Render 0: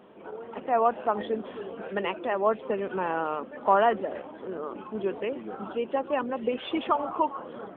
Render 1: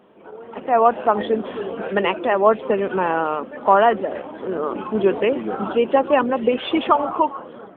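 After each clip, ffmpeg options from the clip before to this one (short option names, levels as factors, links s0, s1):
-af "dynaudnorm=f=110:g=11:m=4.22"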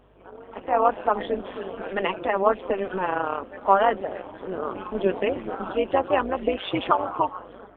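-af "lowshelf=f=180:g=-11.5,aeval=exprs='val(0)+0.002*(sin(2*PI*50*n/s)+sin(2*PI*2*50*n/s)/2+sin(2*PI*3*50*n/s)/3+sin(2*PI*4*50*n/s)/4+sin(2*PI*5*50*n/s)/5)':c=same,tremolo=f=190:d=0.75,volume=0.891"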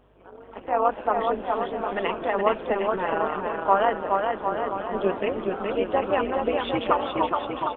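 -af "aecho=1:1:420|756|1025|1240|1412:0.631|0.398|0.251|0.158|0.1,volume=0.794"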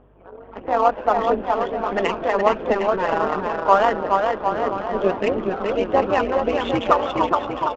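-af "aphaser=in_gain=1:out_gain=1:delay=2.1:decay=0.25:speed=1.5:type=triangular,adynamicsmooth=sensitivity=5:basefreq=2100,aresample=16000,aresample=44100,volume=1.68"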